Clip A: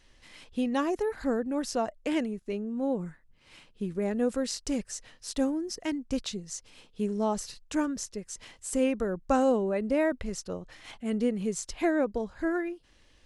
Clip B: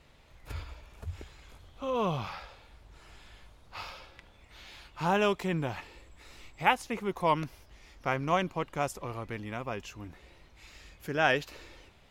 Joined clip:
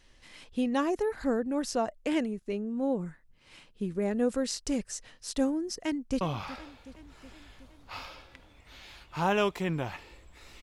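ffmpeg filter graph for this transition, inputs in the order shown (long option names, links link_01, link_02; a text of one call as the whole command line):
ffmpeg -i cue0.wav -i cue1.wav -filter_complex "[0:a]apad=whole_dur=10.62,atrim=end=10.62,atrim=end=6.212[link_01];[1:a]atrim=start=2.048:end=6.46[link_02];[link_01][link_02]acrossfade=duration=0.004:curve1=hsin:curve2=hsin,asplit=2[link_03][link_04];[link_04]afade=type=in:start_time=5.83:duration=0.01,afade=type=out:start_time=6.21:duration=0.01,aecho=0:1:370|740|1110|1480|1850|2220|2590:0.177828|0.115588|0.0751323|0.048836|0.0317434|0.0206332|0.0134116[link_05];[link_03][link_05]amix=inputs=2:normalize=0" out.wav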